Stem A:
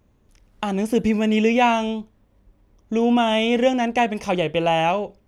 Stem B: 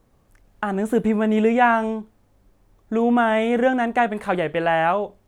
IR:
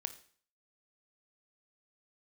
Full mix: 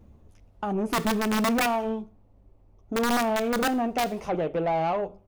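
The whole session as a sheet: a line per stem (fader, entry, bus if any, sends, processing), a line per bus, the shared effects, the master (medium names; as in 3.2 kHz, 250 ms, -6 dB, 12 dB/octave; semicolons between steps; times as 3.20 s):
+2.5 dB, 0.00 s, no send, bass shelf 410 Hz +10.5 dB; peak limiter -15 dBFS, peak gain reduction 13.5 dB; three-phase chorus; auto duck -11 dB, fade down 0.65 s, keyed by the second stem
-2.5 dB, 0.3 ms, polarity flipped, send -4.5 dB, boxcar filter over 25 samples; integer overflow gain 13.5 dB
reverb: on, RT60 0.50 s, pre-delay 20 ms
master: saturation -20.5 dBFS, distortion -11 dB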